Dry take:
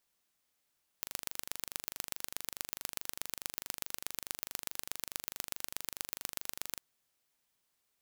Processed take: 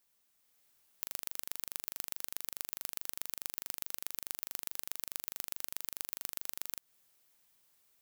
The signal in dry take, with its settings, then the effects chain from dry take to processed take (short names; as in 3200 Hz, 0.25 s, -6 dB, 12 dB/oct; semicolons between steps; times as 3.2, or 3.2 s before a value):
pulse train 24.7/s, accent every 3, -7.5 dBFS 5.76 s
compressor 6:1, threshold -41 dBFS; high shelf 11000 Hz +7.5 dB; AGC gain up to 5 dB